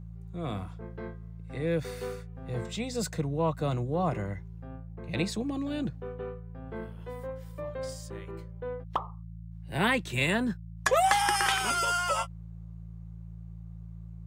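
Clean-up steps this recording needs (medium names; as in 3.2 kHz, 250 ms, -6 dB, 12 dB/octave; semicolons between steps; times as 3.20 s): de-hum 55.7 Hz, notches 3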